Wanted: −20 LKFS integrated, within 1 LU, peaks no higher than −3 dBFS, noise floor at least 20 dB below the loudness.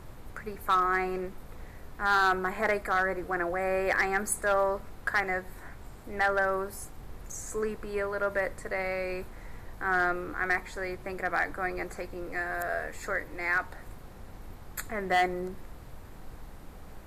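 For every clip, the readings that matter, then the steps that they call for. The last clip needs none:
share of clipped samples 0.3%; peaks flattened at −18.5 dBFS; background noise floor −47 dBFS; target noise floor −50 dBFS; integrated loudness −30.0 LKFS; sample peak −18.5 dBFS; target loudness −20.0 LKFS
→ clipped peaks rebuilt −18.5 dBFS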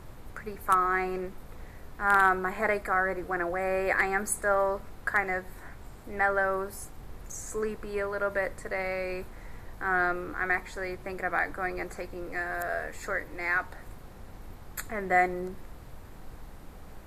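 share of clipped samples 0.0%; background noise floor −47 dBFS; target noise floor −50 dBFS
→ noise reduction from a noise print 6 dB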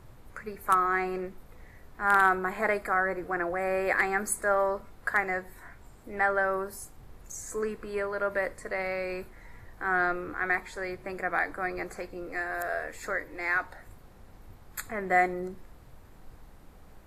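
background noise floor −53 dBFS; integrated loudness −29.5 LKFS; sample peak −9.5 dBFS; target loudness −20.0 LKFS
→ level +9.5 dB
brickwall limiter −3 dBFS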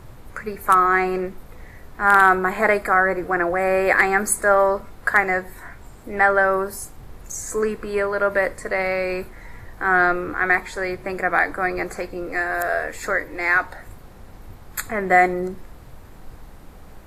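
integrated loudness −20.0 LKFS; sample peak −3.0 dBFS; background noise floor −43 dBFS

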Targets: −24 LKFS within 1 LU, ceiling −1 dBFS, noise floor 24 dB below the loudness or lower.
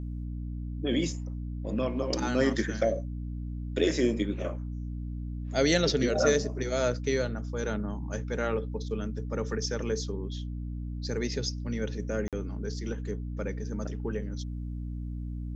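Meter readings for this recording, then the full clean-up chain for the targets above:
number of dropouts 1; longest dropout 47 ms; mains hum 60 Hz; hum harmonics up to 300 Hz; level of the hum −33 dBFS; integrated loudness −31.5 LKFS; sample peak −11.0 dBFS; target loudness −24.0 LKFS
→ repair the gap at 0:12.28, 47 ms
hum removal 60 Hz, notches 5
level +7.5 dB

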